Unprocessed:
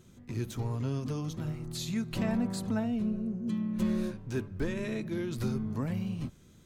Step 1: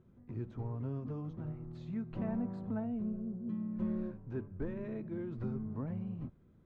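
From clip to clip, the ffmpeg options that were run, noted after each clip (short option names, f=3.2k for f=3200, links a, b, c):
-af "lowpass=1.2k,volume=-6dB"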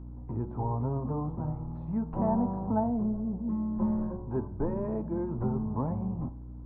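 -af "lowpass=f=900:t=q:w=4.9,aeval=exprs='val(0)+0.00398*(sin(2*PI*60*n/s)+sin(2*PI*2*60*n/s)/2+sin(2*PI*3*60*n/s)/3+sin(2*PI*4*60*n/s)/4+sin(2*PI*5*60*n/s)/5)':c=same,bandreject=f=90.53:t=h:w=4,bandreject=f=181.06:t=h:w=4,bandreject=f=271.59:t=h:w=4,bandreject=f=362.12:t=h:w=4,bandreject=f=452.65:t=h:w=4,bandreject=f=543.18:t=h:w=4,bandreject=f=633.71:t=h:w=4,bandreject=f=724.24:t=h:w=4,bandreject=f=814.77:t=h:w=4,bandreject=f=905.3:t=h:w=4,bandreject=f=995.83:t=h:w=4,bandreject=f=1.08636k:t=h:w=4,bandreject=f=1.17689k:t=h:w=4,bandreject=f=1.26742k:t=h:w=4,bandreject=f=1.35795k:t=h:w=4,bandreject=f=1.44848k:t=h:w=4,bandreject=f=1.53901k:t=h:w=4,volume=7dB"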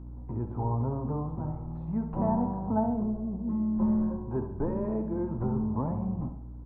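-af "aecho=1:1:69|138|207|276|345:0.316|0.155|0.0759|0.0372|0.0182"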